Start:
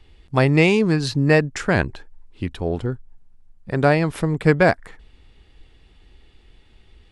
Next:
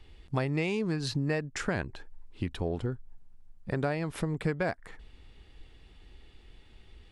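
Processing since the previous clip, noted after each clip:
downward compressor 4 to 1, threshold −26 dBFS, peak gain reduction 14 dB
level −2.5 dB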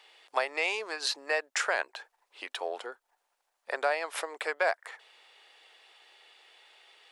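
inverse Chebyshev high-pass filter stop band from 170 Hz, stop band 60 dB
level +6.5 dB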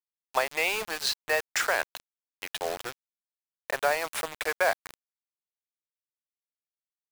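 bit reduction 6 bits
level +2.5 dB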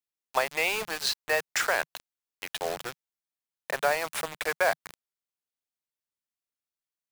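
dynamic equaliser 160 Hz, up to +5 dB, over −56 dBFS, Q 2.3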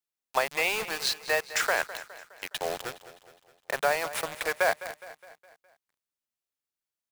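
repeating echo 207 ms, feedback 50%, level −15 dB

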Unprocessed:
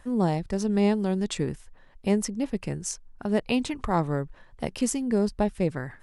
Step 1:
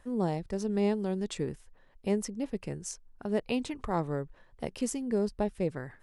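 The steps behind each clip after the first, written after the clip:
parametric band 450 Hz +4 dB 0.86 octaves
level −7 dB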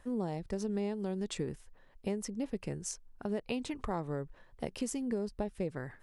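downward compressor, threshold −31 dBFS, peak gain reduction 8.5 dB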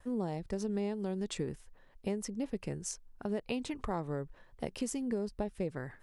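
noise gate with hold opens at −55 dBFS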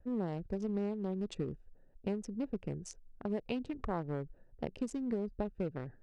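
adaptive Wiener filter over 41 samples
high-frequency loss of the air 78 metres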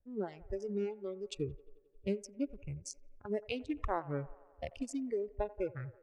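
noise reduction from a noise print of the clip's start 20 dB
delay with a band-pass on its return 88 ms, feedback 71%, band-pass 910 Hz, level −18 dB
one half of a high-frequency compander decoder only
level +4 dB

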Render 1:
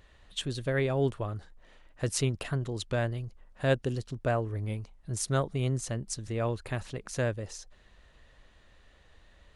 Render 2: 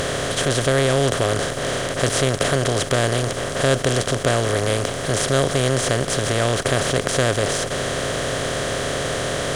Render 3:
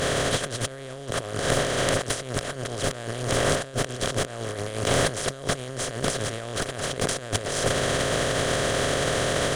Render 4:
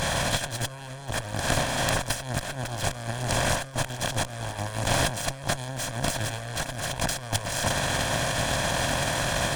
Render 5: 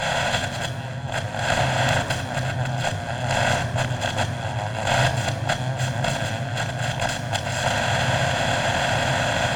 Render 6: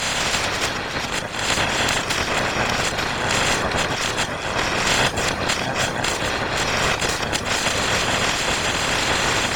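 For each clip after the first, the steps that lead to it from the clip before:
compressor on every frequency bin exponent 0.2; leveller curve on the samples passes 1
compressor whose output falls as the input rises −26 dBFS, ratio −0.5
lower of the sound and its delayed copy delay 1.2 ms
convolution reverb RT60 3.5 s, pre-delay 3 ms, DRR 9 dB; level −3.5 dB
ceiling on every frequency bin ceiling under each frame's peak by 19 dB; reverb reduction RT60 0.63 s; delay with pitch and tempo change per echo 175 ms, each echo −5 semitones, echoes 2; level +1.5 dB

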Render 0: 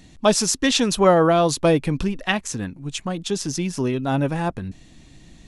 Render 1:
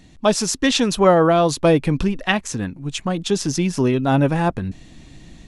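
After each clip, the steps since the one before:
high-shelf EQ 5,000 Hz −4.5 dB
automatic gain control gain up to 5 dB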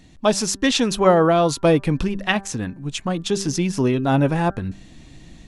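hum removal 196.2 Hz, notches 9
level −1 dB

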